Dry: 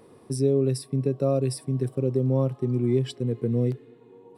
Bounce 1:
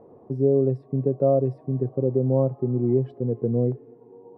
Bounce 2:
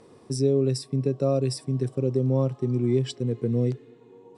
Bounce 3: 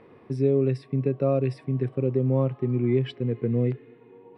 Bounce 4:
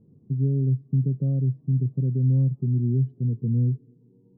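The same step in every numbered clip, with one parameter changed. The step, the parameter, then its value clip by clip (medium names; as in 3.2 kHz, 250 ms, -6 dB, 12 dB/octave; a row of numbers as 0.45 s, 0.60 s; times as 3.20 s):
resonant low-pass, frequency: 720 Hz, 6.9 kHz, 2.3 kHz, 170 Hz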